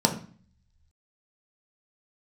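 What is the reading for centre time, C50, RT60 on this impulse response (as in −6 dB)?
13 ms, 10.5 dB, 0.45 s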